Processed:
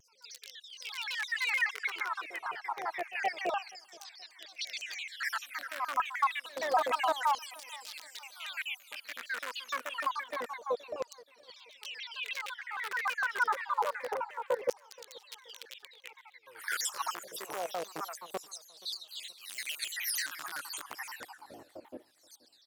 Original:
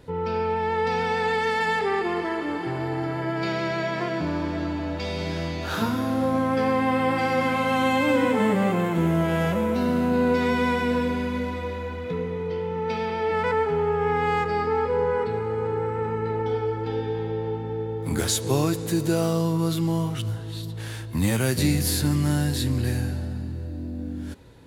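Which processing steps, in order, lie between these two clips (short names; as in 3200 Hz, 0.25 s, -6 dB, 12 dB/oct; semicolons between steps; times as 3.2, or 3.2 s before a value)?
random spectral dropouts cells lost 72%; bell 140 Hz -2.5 dB 0.25 oct; limiter -20.5 dBFS, peak gain reduction 8.5 dB; in parallel at -8 dB: wrapped overs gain 21 dB; on the sum: pre-echo 0.132 s -18 dB; LFO high-pass saw down 0.25 Hz 470–5600 Hz; on a send: feedback echo 0.519 s, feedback 43%, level -22.5 dB; on the sum: speed mistake 44.1 kHz file played as 48 kHz; shaped vibrato saw down 6.5 Hz, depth 250 cents; gain -4.5 dB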